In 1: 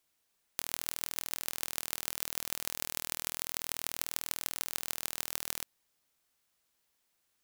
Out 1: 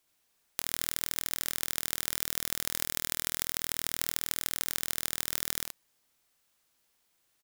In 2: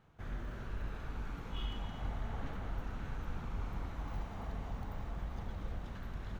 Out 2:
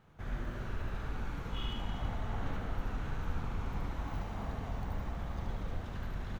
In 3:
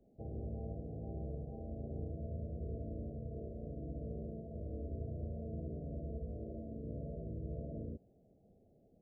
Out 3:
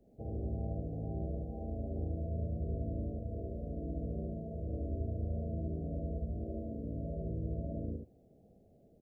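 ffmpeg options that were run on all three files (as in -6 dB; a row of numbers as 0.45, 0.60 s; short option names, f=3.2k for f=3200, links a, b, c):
-af "aecho=1:1:75:0.668,volume=2.5dB"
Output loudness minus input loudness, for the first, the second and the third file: +4.0, +3.5, +5.0 LU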